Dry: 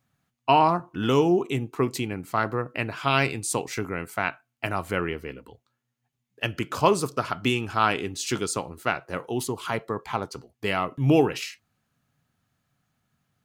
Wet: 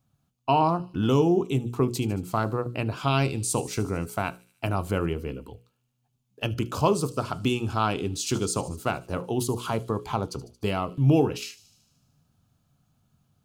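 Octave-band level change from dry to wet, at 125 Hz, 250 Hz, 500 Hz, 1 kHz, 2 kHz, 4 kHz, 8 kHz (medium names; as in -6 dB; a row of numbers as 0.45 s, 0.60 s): +4.0 dB, +0.5 dB, -1.0 dB, -3.0 dB, -7.0 dB, -2.5 dB, +0.5 dB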